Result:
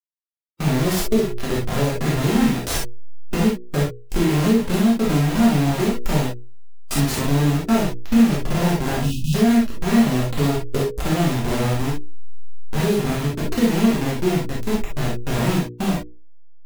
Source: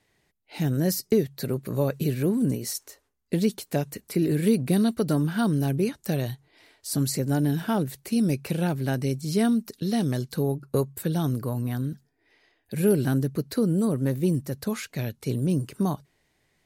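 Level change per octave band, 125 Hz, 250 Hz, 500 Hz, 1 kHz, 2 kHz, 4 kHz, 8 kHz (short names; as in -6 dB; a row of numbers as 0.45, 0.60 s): +4.5, +6.0, +4.0, +9.5, +10.0, +9.0, +5.5 dB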